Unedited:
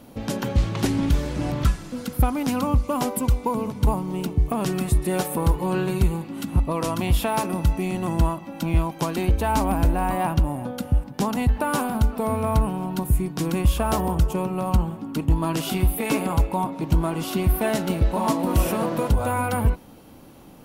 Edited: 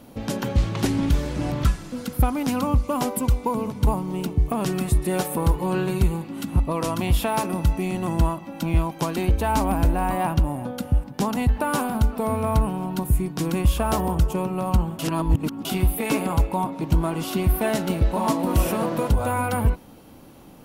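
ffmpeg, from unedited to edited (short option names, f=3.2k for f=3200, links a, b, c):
-filter_complex "[0:a]asplit=3[a][b][c];[a]atrim=end=14.992[d];[b]atrim=start=14.988:end=15.652,asetpts=PTS-STARTPTS,areverse[e];[c]atrim=start=15.648[f];[d][e]acrossfade=d=0.004:c1=hsin:c2=hsin[g];[g][f]acrossfade=d=0.004:c1=hsin:c2=hsin"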